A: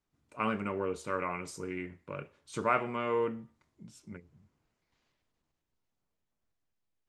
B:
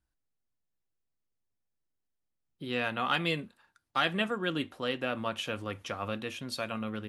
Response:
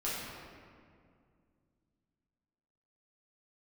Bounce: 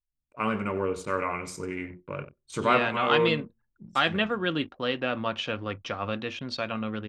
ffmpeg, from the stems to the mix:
-filter_complex "[0:a]lowshelf=f=64:g=6,bandreject=f=60:t=h:w=6,bandreject=f=120:t=h:w=6,bandreject=f=180:t=h:w=6,bandreject=f=240:t=h:w=6,bandreject=f=300:t=h:w=6,bandreject=f=360:t=h:w=6,volume=-4dB,asplit=2[a][b];[b]volume=-14.5dB[c];[1:a]lowpass=f=5.5k:w=0.5412,lowpass=f=5.5k:w=1.3066,volume=-5dB[d];[c]aecho=0:1:92|184|276|368:1|0.23|0.0529|0.0122[e];[a][d][e]amix=inputs=3:normalize=0,anlmdn=0.000631,dynaudnorm=f=150:g=5:m=9dB"

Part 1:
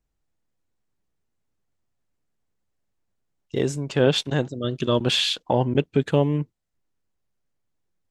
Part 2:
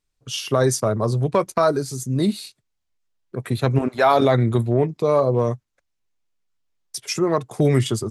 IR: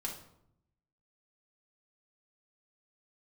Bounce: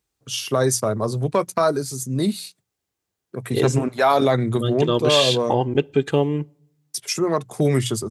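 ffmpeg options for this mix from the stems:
-filter_complex "[0:a]aecho=1:1:2.5:0.35,volume=0.5dB,asplit=3[a][b][c];[a]atrim=end=3.83,asetpts=PTS-STARTPTS,afade=t=out:st=3.826:d=0.004:c=hsin[d];[b]atrim=start=3.83:end=4.57,asetpts=PTS-STARTPTS,volume=0[e];[c]atrim=start=4.57,asetpts=PTS-STARTPTS,afade=t=in:d=0.004:c=hsin[f];[d][e][f]concat=n=3:v=0:a=1,asplit=2[g][h];[h]volume=-24dB[i];[1:a]bandreject=f=60:t=h:w=6,bandreject=f=120:t=h:w=6,bandreject=f=180:t=h:w=6,volume=-1dB[j];[2:a]atrim=start_sample=2205[k];[i][k]afir=irnorm=-1:irlink=0[l];[g][j][l]amix=inputs=3:normalize=0,highpass=87,highshelf=f=6.7k:g=6.5"

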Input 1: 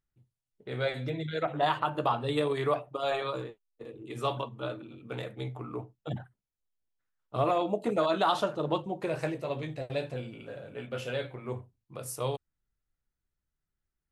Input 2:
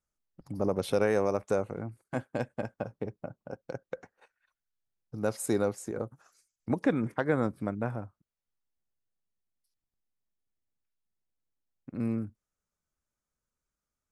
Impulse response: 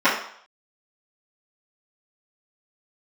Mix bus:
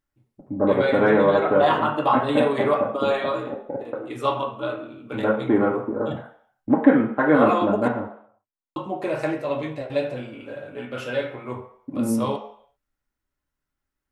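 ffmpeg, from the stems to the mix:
-filter_complex "[0:a]volume=2dB,asplit=3[a][b][c];[a]atrim=end=7.88,asetpts=PTS-STARTPTS,afade=t=out:st=7.876:d=0.004:c=hsin[d];[b]atrim=start=7.88:end=8.76,asetpts=PTS-STARTPTS,volume=0[e];[c]atrim=start=8.76,asetpts=PTS-STARTPTS,afade=t=in:d=0.004:c=hsin[f];[d][e][f]concat=n=3:v=0:a=1,asplit=2[g][h];[h]volume=-18.5dB[i];[1:a]lowpass=f=2.3k:w=0.5412,lowpass=f=2.3k:w=1.3066,afwtdn=0.00631,volume=2.5dB,asplit=2[j][k];[k]volume=-14.5dB[l];[2:a]atrim=start_sample=2205[m];[i][l]amix=inputs=2:normalize=0[n];[n][m]afir=irnorm=-1:irlink=0[o];[g][j][o]amix=inputs=3:normalize=0"

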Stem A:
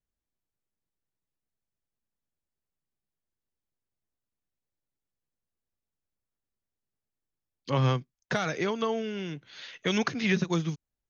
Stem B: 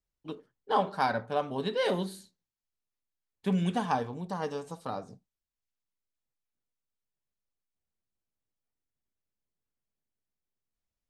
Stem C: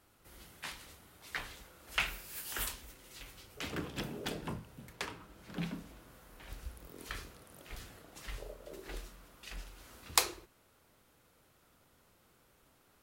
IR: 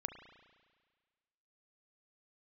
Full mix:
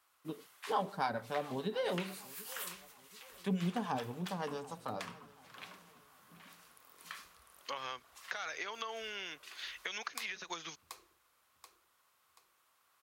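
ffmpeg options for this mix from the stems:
-filter_complex "[0:a]agate=range=-33dB:threshold=-41dB:ratio=3:detection=peak,acompressor=threshold=-26dB:ratio=6,volume=2.5dB,asplit=2[a][b];[1:a]acrossover=split=600[c][d];[c]aeval=exprs='val(0)*(1-0.7/2+0.7/2*cos(2*PI*7.1*n/s))':c=same[e];[d]aeval=exprs='val(0)*(1-0.7/2-0.7/2*cos(2*PI*7.1*n/s))':c=same[f];[e][f]amix=inputs=2:normalize=0,volume=0.5dB,asplit=2[g][h];[h]volume=-23dB[i];[2:a]equalizer=f=1.1k:w=6.1:g=8.5,volume=-3.5dB,asplit=2[j][k];[k]volume=-20.5dB[l];[b]apad=whole_len=574466[m];[j][m]sidechaincompress=threshold=-33dB:ratio=8:attack=16:release=129[n];[a][n]amix=inputs=2:normalize=0,highpass=930,acompressor=threshold=-36dB:ratio=6,volume=0dB[o];[i][l]amix=inputs=2:normalize=0,aecho=0:1:732|1464|2196|2928|3660:1|0.38|0.144|0.0549|0.0209[p];[g][o][p]amix=inputs=3:normalize=0,highpass=68,acompressor=threshold=-38dB:ratio=1.5"

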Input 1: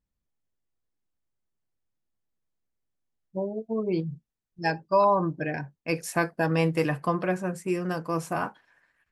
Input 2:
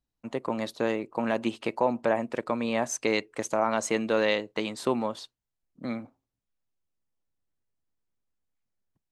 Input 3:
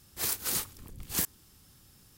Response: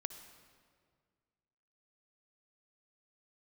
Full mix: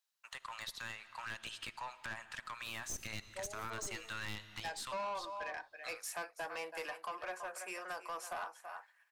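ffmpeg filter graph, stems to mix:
-filter_complex "[0:a]highpass=f=680:w=0.5412,highpass=f=680:w=1.3066,volume=-0.5dB,asplit=2[a][b];[b]volume=-15dB[c];[1:a]highpass=f=1.4k:w=0.5412,highpass=f=1.4k:w=1.3066,equalizer=f=2.2k:t=o:w=0.42:g=-6.5,aeval=exprs='0.168*(cos(1*acos(clip(val(0)/0.168,-1,1)))-cos(1*PI/2))+0.0299*(cos(4*acos(clip(val(0)/0.168,-1,1)))-cos(4*PI/2))':c=same,volume=2.5dB,asplit=2[d][e];[e]volume=-6dB[f];[2:a]alimiter=limit=-23dB:level=0:latency=1,adelay=2450,volume=-19dB[g];[3:a]atrim=start_sample=2205[h];[f][h]afir=irnorm=-1:irlink=0[i];[c]aecho=0:1:329:1[j];[a][d][g][i][j]amix=inputs=5:normalize=0,acrossover=split=420[k][l];[l]acompressor=threshold=-40dB:ratio=2.5[m];[k][m]amix=inputs=2:normalize=0,asoftclip=type=tanh:threshold=-35.5dB"

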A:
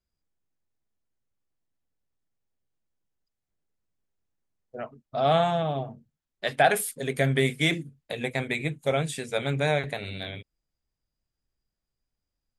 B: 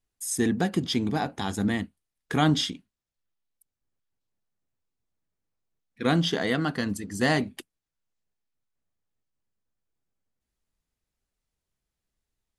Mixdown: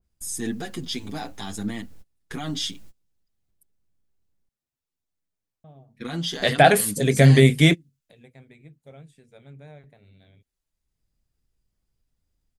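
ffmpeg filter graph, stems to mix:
-filter_complex "[0:a]lowshelf=f=350:g=11.5,acompressor=mode=upward:threshold=-26dB:ratio=2.5,adynamicequalizer=threshold=0.0126:dfrequency=2100:dqfactor=0.7:tfrequency=2100:tqfactor=0.7:attack=5:release=100:ratio=0.375:range=3:mode=cutabove:tftype=highshelf,volume=3dB,asplit=3[a][b][c];[a]atrim=end=4.49,asetpts=PTS-STARTPTS,afade=t=out:st=4.486:d=0.004:c=hsin[d];[b]atrim=start=4.49:end=5.64,asetpts=PTS-STARTPTS,volume=0[e];[c]atrim=start=5.64,asetpts=PTS-STARTPTS,afade=t=in:d=0.004:c=hsin[f];[d][e][f]concat=n=3:v=0:a=1[g];[1:a]highshelf=f=2.6k:g=5.5,alimiter=limit=-16.5dB:level=0:latency=1:release=39,asplit=2[h][i];[i]adelay=7.4,afreqshift=0.74[j];[h][j]amix=inputs=2:normalize=1,volume=-2dB,asplit=2[k][l];[l]apad=whole_len=555094[m];[g][m]sidechaingate=range=-29dB:threshold=-57dB:ratio=16:detection=peak[n];[n][k]amix=inputs=2:normalize=0,adynamicequalizer=threshold=0.0126:dfrequency=2400:dqfactor=0.7:tfrequency=2400:tqfactor=0.7:attack=5:release=100:ratio=0.375:range=3.5:mode=boostabove:tftype=highshelf"

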